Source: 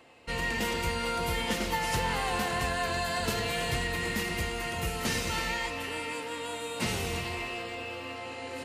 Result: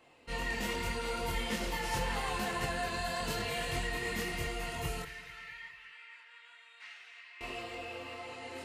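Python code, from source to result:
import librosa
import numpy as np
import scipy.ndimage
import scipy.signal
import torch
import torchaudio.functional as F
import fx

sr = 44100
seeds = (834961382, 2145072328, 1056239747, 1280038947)

y = fx.ladder_bandpass(x, sr, hz=2100.0, resonance_pct=45, at=(5.02, 7.41))
y = fx.chorus_voices(y, sr, voices=6, hz=0.79, base_ms=24, depth_ms=4.4, mix_pct=50)
y = fx.echo_feedback(y, sr, ms=220, feedback_pct=47, wet_db=-16.5)
y = y * librosa.db_to_amplitude(-2.0)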